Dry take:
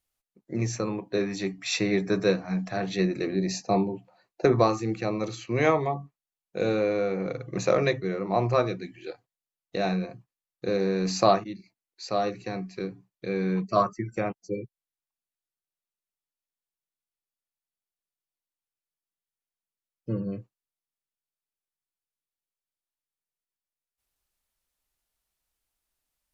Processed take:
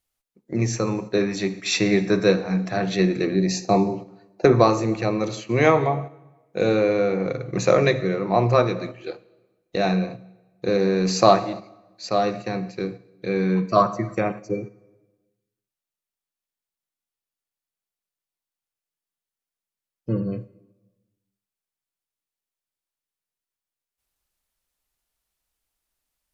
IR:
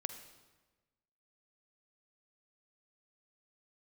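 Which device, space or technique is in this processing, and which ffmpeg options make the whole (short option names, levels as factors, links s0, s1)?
keyed gated reverb: -filter_complex "[0:a]asplit=3[s0][s1][s2];[1:a]atrim=start_sample=2205[s3];[s1][s3]afir=irnorm=-1:irlink=0[s4];[s2]apad=whole_len=1161207[s5];[s4][s5]sidechaingate=range=0.447:threshold=0.01:ratio=16:detection=peak,volume=1.58[s6];[s0][s6]amix=inputs=2:normalize=0,volume=0.794"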